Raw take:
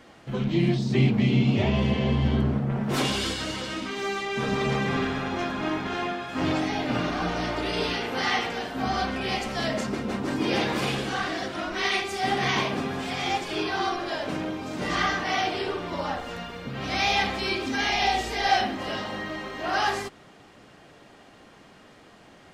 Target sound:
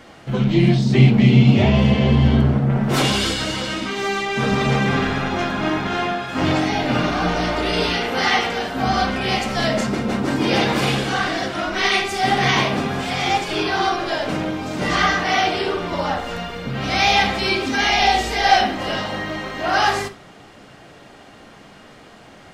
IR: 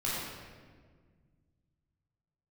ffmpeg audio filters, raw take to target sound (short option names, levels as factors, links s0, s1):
-filter_complex "[0:a]asplit=2[s0][s1];[1:a]atrim=start_sample=2205,atrim=end_sample=3969[s2];[s1][s2]afir=irnorm=-1:irlink=0,volume=0.211[s3];[s0][s3]amix=inputs=2:normalize=0,volume=2"